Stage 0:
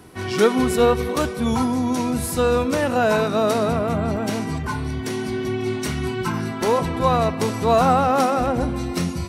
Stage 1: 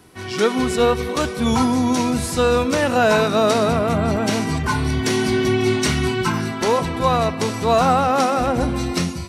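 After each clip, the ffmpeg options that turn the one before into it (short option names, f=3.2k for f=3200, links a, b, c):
-filter_complex "[0:a]acrossover=split=9000[a][b];[b]acompressor=threshold=-48dB:ratio=4:attack=1:release=60[c];[a][c]amix=inputs=2:normalize=0,equalizer=f=5.4k:w=0.31:g=4.5,dynaudnorm=f=120:g=7:m=13dB,volume=-4.5dB"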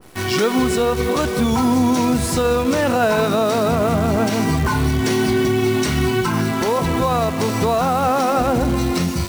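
-af "alimiter=limit=-17dB:level=0:latency=1:release=158,acrusher=bits=7:dc=4:mix=0:aa=0.000001,adynamicequalizer=threshold=0.0141:dfrequency=1500:dqfactor=0.7:tfrequency=1500:tqfactor=0.7:attack=5:release=100:ratio=0.375:range=1.5:mode=cutabove:tftype=highshelf,volume=8dB"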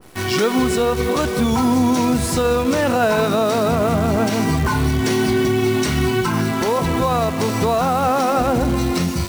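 -af anull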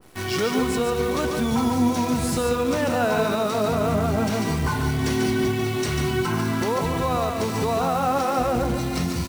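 -af "aecho=1:1:144:0.562,volume=-6dB"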